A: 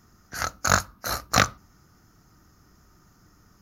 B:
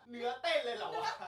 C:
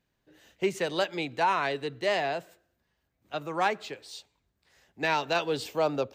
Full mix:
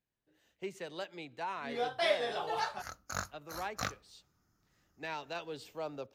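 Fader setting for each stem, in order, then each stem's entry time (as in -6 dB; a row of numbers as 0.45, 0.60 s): -17.5, +2.5, -13.5 dB; 2.45, 1.55, 0.00 s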